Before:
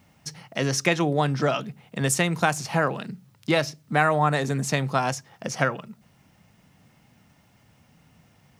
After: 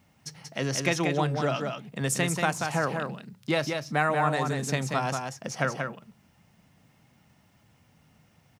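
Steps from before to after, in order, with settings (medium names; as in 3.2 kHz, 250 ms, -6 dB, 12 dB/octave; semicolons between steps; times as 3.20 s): delay 185 ms -5 dB; trim -4.5 dB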